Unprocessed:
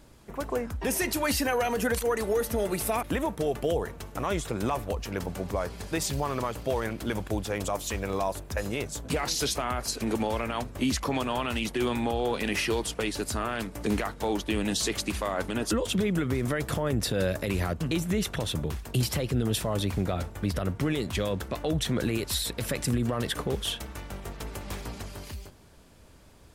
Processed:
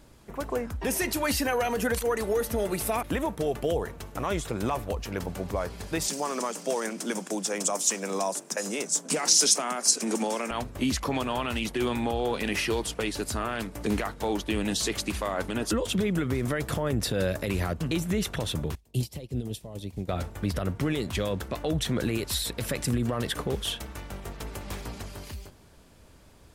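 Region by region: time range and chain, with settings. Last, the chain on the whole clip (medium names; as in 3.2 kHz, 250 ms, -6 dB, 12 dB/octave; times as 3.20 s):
6.08–10.51 s: steep high-pass 160 Hz 96 dB/octave + high-order bell 7 kHz +12.5 dB 1.1 oct
18.75–20.09 s: peaking EQ 1.4 kHz -14 dB 1.1 oct + upward expansion 2.5:1, over -37 dBFS
whole clip: none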